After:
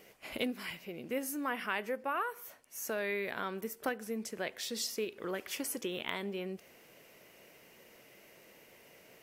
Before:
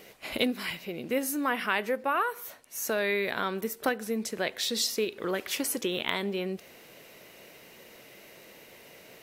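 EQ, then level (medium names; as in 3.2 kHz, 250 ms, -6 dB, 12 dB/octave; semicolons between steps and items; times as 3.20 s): peaking EQ 3.9 kHz -7 dB 0.24 oct; -7.0 dB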